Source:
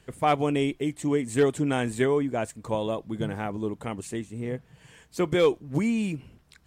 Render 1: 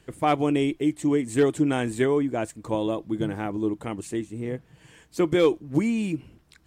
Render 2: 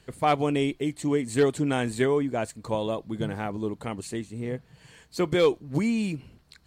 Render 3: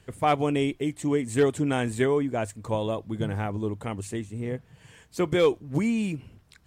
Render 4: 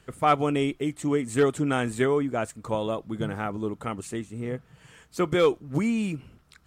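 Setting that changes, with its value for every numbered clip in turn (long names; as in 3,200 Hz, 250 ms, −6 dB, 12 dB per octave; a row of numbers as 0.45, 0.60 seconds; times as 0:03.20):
parametric band, centre frequency: 320, 4,300, 100, 1,300 Hertz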